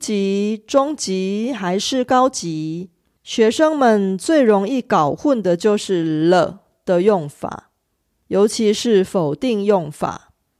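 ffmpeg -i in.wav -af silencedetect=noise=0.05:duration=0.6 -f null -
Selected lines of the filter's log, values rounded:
silence_start: 7.59
silence_end: 8.31 | silence_duration: 0.72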